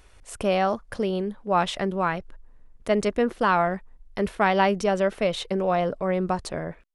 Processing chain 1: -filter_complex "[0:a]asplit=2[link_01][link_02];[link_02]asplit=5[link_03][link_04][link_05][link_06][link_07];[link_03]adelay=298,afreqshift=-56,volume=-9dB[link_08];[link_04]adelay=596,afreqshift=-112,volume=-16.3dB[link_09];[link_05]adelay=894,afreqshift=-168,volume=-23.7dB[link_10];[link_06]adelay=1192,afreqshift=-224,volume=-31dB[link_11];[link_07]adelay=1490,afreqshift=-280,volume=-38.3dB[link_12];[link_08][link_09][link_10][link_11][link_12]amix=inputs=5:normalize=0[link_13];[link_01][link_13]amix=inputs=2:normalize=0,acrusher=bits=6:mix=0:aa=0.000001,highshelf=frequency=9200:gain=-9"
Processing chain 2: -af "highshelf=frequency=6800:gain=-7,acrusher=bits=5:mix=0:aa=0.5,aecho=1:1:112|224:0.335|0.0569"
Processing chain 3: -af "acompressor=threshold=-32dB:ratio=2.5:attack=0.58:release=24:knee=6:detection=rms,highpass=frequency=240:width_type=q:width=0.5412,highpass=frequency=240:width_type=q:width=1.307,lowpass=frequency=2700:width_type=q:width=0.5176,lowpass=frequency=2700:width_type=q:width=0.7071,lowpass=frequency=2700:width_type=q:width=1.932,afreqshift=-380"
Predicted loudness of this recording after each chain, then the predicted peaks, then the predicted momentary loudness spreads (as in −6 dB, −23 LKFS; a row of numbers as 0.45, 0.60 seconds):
−24.5, −24.5, −37.0 LKFS; −8.5, −8.0, −20.5 dBFS; 9, 10, 10 LU